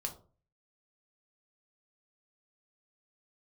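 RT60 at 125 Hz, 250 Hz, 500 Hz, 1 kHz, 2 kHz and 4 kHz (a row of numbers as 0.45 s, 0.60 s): 0.60 s, 0.45 s, 0.45 s, 0.35 s, 0.25 s, 0.20 s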